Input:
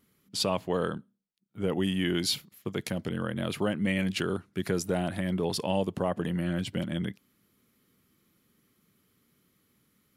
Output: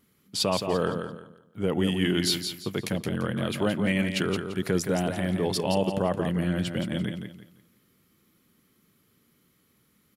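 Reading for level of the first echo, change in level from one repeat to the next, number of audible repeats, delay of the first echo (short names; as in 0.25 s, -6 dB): -7.0 dB, -11.0 dB, 3, 0.171 s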